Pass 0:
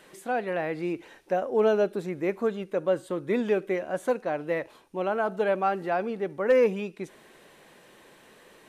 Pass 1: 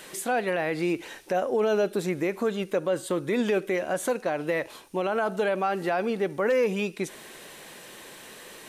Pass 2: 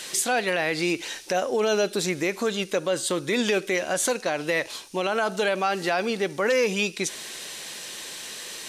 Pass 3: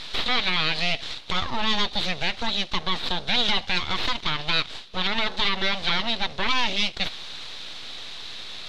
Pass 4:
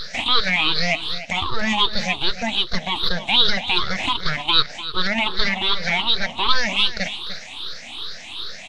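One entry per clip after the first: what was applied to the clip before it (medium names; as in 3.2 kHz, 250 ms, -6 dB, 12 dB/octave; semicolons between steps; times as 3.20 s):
treble shelf 2.9 kHz +10 dB; in parallel at 0 dB: compression, threshold -31 dBFS, peak gain reduction 14 dB; on the sum: peak limiter -16.5 dBFS, peak gain reduction 6.5 dB
peaking EQ 5.4 kHz +14.5 dB 2.2 oct
full-wave rectifier; resonant low-pass 3.8 kHz, resonance Q 4.9
drifting ripple filter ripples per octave 0.6, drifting +2.6 Hz, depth 22 dB; delay 298 ms -13.5 dB; trim -1 dB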